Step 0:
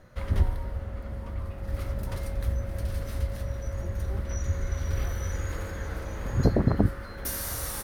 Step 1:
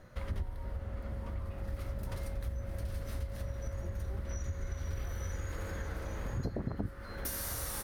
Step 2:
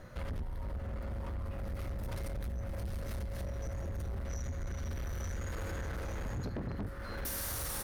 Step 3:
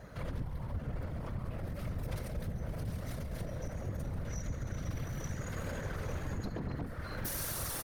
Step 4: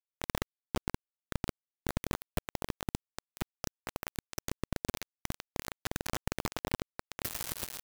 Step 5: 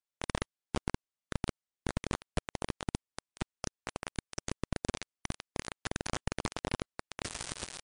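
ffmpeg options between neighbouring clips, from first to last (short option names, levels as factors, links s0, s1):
-af "acompressor=threshold=0.0224:ratio=4,volume=0.841"
-af "asoftclip=type=tanh:threshold=0.0112,volume=1.78"
-af "aecho=1:1:138:0.2,afftfilt=real='hypot(re,im)*cos(2*PI*random(0))':imag='hypot(re,im)*sin(2*PI*random(1))':win_size=512:overlap=0.75,volume=2"
-af "acrusher=bits=4:mix=0:aa=0.000001,volume=1.41"
-af "volume=1.12" -ar 22050 -c:a libmp3lame -b:a 144k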